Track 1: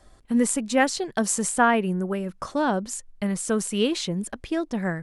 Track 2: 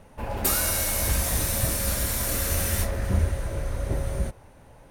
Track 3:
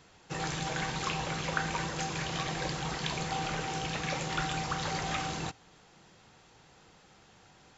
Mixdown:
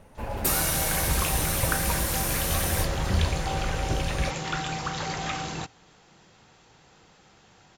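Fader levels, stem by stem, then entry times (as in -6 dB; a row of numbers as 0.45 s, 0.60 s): mute, -1.5 dB, +2.5 dB; mute, 0.00 s, 0.15 s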